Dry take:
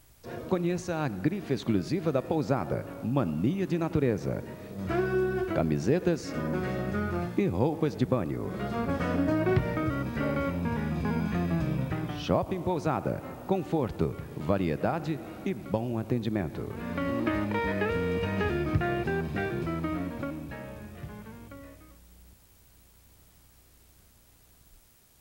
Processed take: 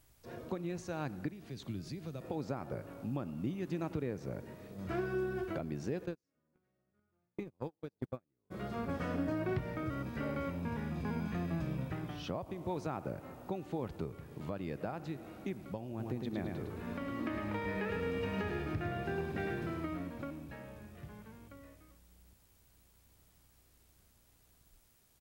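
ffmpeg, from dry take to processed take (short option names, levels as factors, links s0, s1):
-filter_complex "[0:a]asettb=1/sr,asplit=3[s0][s1][s2];[s0]atrim=end=1.294[s3];[s1]atrim=start=1.29:end=2.21,asetpts=PTS-STARTPTS,afade=t=in:d=0.004:c=qsin,afade=t=out:st=0.916:d=0.004:c=qsin,acrossover=split=170|3000[s4][s5][s6];[s5]acompressor=threshold=0.00501:ratio=2:attack=3.2:release=140:knee=2.83:detection=peak[s7];[s4][s7][s6]amix=inputs=3:normalize=0[s8];[s2]atrim=start=2.206[s9];[s3][s8]acrossfade=d=0.004:c1=hsin:c2=qsin[s10];[s10][s9]acrossfade=d=0.004:c1=qsin:c2=hsin,asplit=3[s11][s12][s13];[s11]afade=t=out:st=6.05:d=0.02[s14];[s12]agate=range=0.00794:threshold=0.0631:ratio=16:release=100:detection=peak,afade=t=in:st=6.05:d=0.02,afade=t=out:st=8.5:d=0.02[s15];[s13]afade=t=in:st=8.5:d=0.02[s16];[s14][s15][s16]amix=inputs=3:normalize=0,asplit=3[s17][s18][s19];[s17]afade=t=out:st=15.98:d=0.02[s20];[s18]aecho=1:1:107|214|321|428|535:0.631|0.259|0.106|0.0435|0.0178,afade=t=in:st=15.98:d=0.02,afade=t=out:st=19.85:d=0.02[s21];[s19]afade=t=in:st=19.85:d=0.02[s22];[s20][s21][s22]amix=inputs=3:normalize=0,alimiter=limit=0.133:level=0:latency=1:release=427,volume=0.398"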